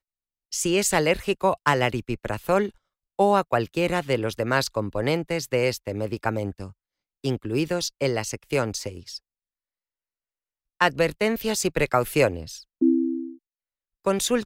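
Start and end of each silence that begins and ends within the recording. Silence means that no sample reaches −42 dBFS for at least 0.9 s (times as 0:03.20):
0:09.18–0:10.80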